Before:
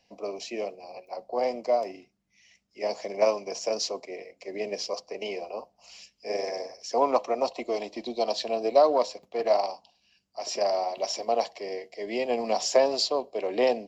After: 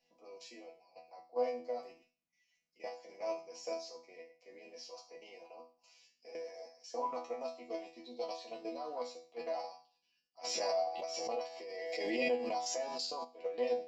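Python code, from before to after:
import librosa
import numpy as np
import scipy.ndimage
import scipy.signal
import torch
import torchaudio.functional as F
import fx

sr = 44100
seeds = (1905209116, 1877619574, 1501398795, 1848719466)

y = fx.low_shelf(x, sr, hz=180.0, db=-6.0)
y = fx.level_steps(y, sr, step_db=14)
y = fx.resonator_bank(y, sr, root=52, chord='fifth', decay_s=0.38)
y = fx.pre_swell(y, sr, db_per_s=24.0, at=(10.43, 13.23), fade=0.02)
y = y * 10.0 ** (7.0 / 20.0)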